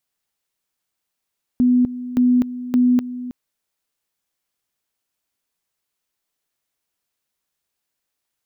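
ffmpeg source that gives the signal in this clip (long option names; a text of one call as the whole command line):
ffmpeg -f lavfi -i "aevalsrc='pow(10,(-11.5-14.5*gte(mod(t,0.57),0.25))/20)*sin(2*PI*248*t)':duration=1.71:sample_rate=44100" out.wav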